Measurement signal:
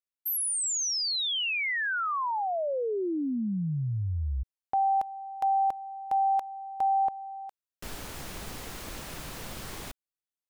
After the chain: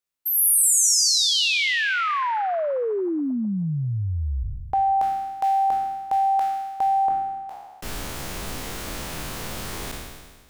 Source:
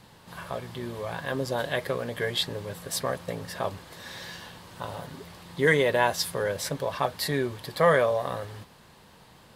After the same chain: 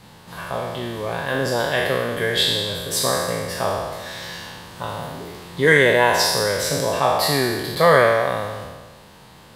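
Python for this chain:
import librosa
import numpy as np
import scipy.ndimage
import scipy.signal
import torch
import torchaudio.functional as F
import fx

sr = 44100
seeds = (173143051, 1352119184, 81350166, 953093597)

y = fx.spec_trails(x, sr, decay_s=1.46)
y = y * librosa.db_to_amplitude(4.5)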